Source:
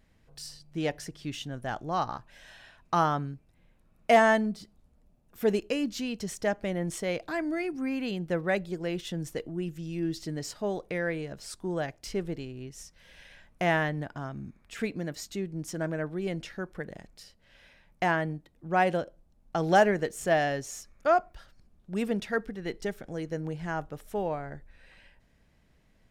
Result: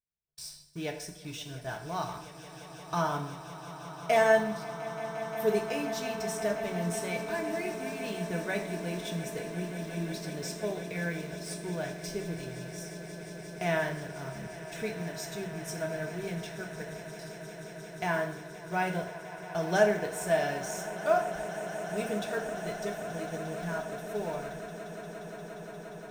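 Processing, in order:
high-shelf EQ 4,000 Hz +7 dB
in parallel at −9.5 dB: bit reduction 6 bits
on the sum: EQ curve with evenly spaced ripples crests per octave 1.6, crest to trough 6 dB
noise gate −48 dBFS, range −29 dB
notch comb filter 270 Hz
on a send: echo that builds up and dies away 176 ms, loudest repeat 8, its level −17 dB
on the sum: dense smooth reverb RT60 0.7 s, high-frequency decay 0.9×, DRR 4 dB
level −8 dB

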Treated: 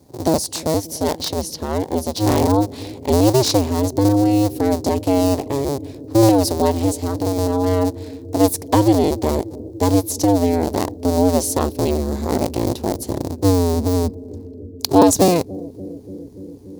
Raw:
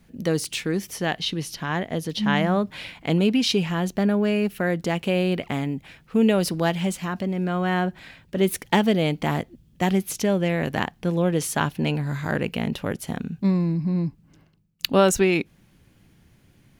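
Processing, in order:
sub-harmonics by changed cycles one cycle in 2, inverted
high-pass filter 76 Hz
flat-topped bell 2,000 Hz −15 dB
on a send: bucket-brigade delay 289 ms, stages 1,024, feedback 83%, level −18 dB
on the sum: level +6.5 dB

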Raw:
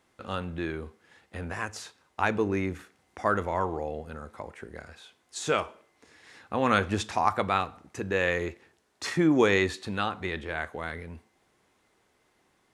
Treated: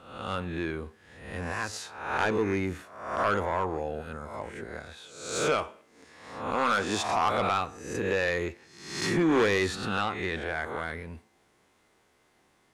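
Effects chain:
peak hold with a rise ahead of every peak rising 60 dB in 0.73 s
0:06.55–0:07.05: high-pass filter 270 Hz 6 dB per octave
soft clipping −18 dBFS, distortion −12 dB

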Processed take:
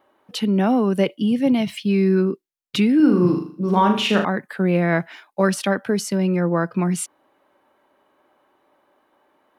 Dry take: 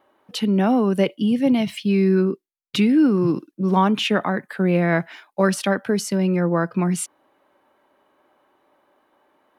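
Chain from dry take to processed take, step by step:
0:02.96–0:04.25: flutter between parallel walls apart 6.7 metres, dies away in 0.46 s

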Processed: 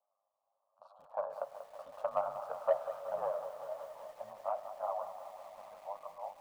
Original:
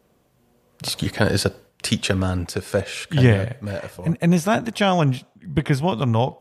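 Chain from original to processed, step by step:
source passing by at 0:02.53, 10 m/s, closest 3.5 metres
flanger 1 Hz, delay 8.3 ms, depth 6.4 ms, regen −4%
on a send at −14 dB: convolution reverb RT60 3.5 s, pre-delay 50 ms
on the sum: ring modulation 51 Hz
elliptic band-pass filter 590–1,200 Hz, stop band 40 dB
in parallel at −4 dB: soft clipping −31 dBFS, distortion −13 dB
on the sum: feedback echo at a low word length 188 ms, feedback 80%, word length 10 bits, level −11.5 dB
level +3.5 dB

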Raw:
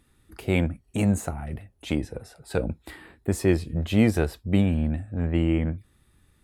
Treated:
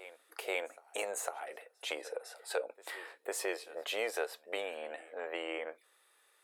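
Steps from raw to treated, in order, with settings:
elliptic high-pass filter 470 Hz, stop band 80 dB
backwards echo 504 ms −22.5 dB
downward compressor 2 to 1, threshold −38 dBFS, peak gain reduction 8.5 dB
level +1.5 dB

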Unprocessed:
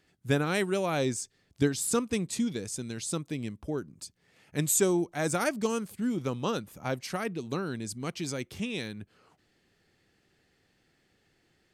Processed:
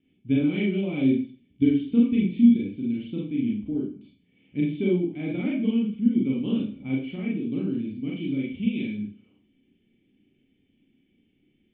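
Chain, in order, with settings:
formant resonators in series i
four-comb reverb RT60 0.4 s, combs from 30 ms, DRR −4 dB
level +8.5 dB

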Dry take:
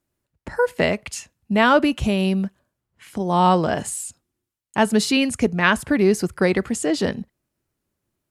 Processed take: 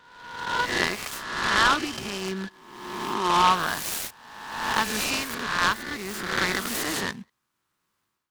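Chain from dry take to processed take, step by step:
peak hold with a rise ahead of every peak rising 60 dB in 1.13 s
high-pass filter 110 Hz
low shelf with overshoot 800 Hz −9.5 dB, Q 3
automatic gain control gain up to 12.5 dB
0:00.69–0:03.42: hollow resonant body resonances 360/1,700/3,100 Hz, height 14 dB
short delay modulated by noise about 2,000 Hz, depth 0.054 ms
level −8 dB

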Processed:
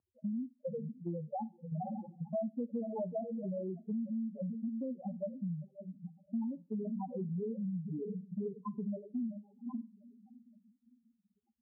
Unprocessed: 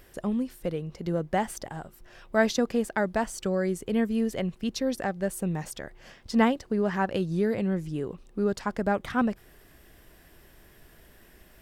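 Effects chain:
adaptive Wiener filter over 25 samples
feedback delay with all-pass diffusion 501 ms, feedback 44%, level −8.5 dB
0:01.72–0:03.45: leveller curve on the samples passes 2
noise gate −32 dBFS, range −21 dB
spectral peaks only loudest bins 2
high-pass filter 120 Hz 24 dB per octave
on a send at −12.5 dB: convolution reverb RT60 0.30 s, pre-delay 3 ms
on the sum: harmonic and percussive parts rebalanced percussive −6 dB
downward compressor 5 to 1, threshold −48 dBFS, peak gain reduction 25.5 dB
Butterworth low-pass 1,300 Hz
level +10 dB

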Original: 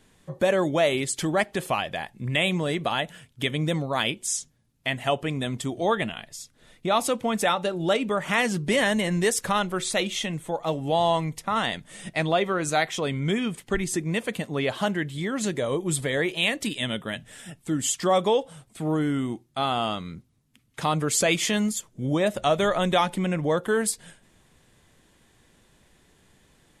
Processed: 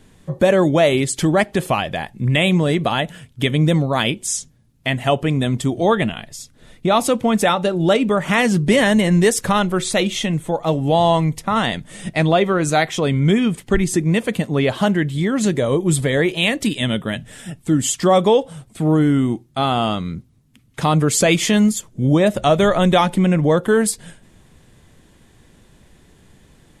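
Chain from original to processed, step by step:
low-shelf EQ 380 Hz +7.5 dB
level +5 dB

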